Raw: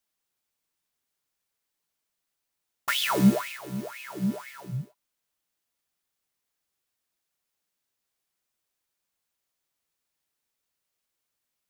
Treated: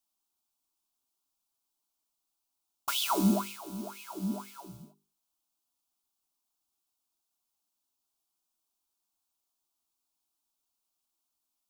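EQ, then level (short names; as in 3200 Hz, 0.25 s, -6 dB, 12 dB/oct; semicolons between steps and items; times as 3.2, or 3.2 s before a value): notches 50/100/150/200/250/300/350/400 Hz; fixed phaser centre 500 Hz, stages 6; 0.0 dB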